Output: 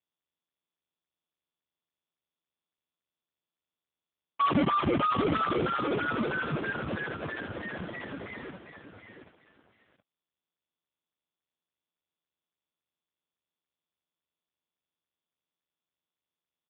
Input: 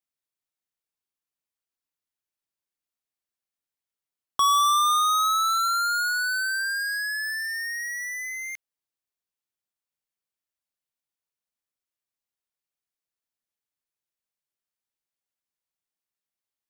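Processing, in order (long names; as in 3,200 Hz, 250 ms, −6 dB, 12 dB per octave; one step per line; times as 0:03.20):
low-pass filter 2,300 Hz 6 dB per octave
sample-and-hold swept by an LFO 29×, swing 160% 3.1 Hz
on a send: repeating echo 724 ms, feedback 44%, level −8 dB
on the sum: dead-zone distortion −48 dBFS
AMR narrowband 5.15 kbit/s 8,000 Hz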